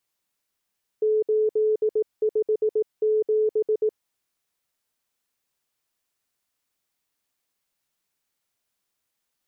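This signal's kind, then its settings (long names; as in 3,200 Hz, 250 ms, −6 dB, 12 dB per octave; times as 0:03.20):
Morse code "857" 18 words per minute 431 Hz −18 dBFS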